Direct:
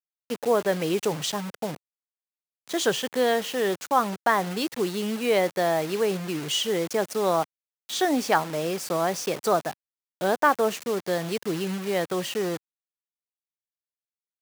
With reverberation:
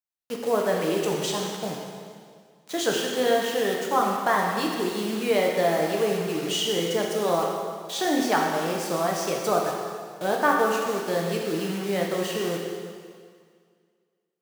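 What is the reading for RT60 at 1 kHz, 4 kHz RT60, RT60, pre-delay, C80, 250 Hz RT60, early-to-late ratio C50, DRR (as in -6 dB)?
2.0 s, 1.9 s, 2.0 s, 4 ms, 3.0 dB, 2.0 s, 1.5 dB, -1.0 dB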